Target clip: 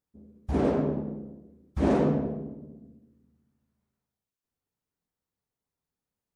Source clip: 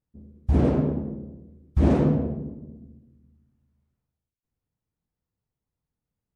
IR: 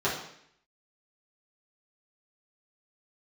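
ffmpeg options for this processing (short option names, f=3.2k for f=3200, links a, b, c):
-filter_complex "[0:a]lowshelf=f=190:g=-11,asplit=2[a][b];[1:a]atrim=start_sample=2205,asetrate=42777,aresample=44100[c];[b][c]afir=irnorm=-1:irlink=0,volume=-21.5dB[d];[a][d]amix=inputs=2:normalize=0"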